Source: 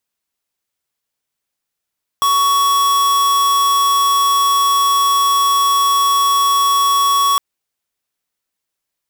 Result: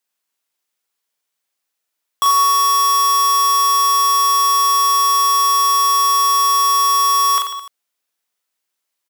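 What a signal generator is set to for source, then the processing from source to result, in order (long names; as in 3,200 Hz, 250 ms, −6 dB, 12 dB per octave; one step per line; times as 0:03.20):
tone square 1,120 Hz −13.5 dBFS 5.16 s
high-pass filter 420 Hz 6 dB per octave
on a send: reverse bouncing-ball delay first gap 40 ms, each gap 1.2×, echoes 5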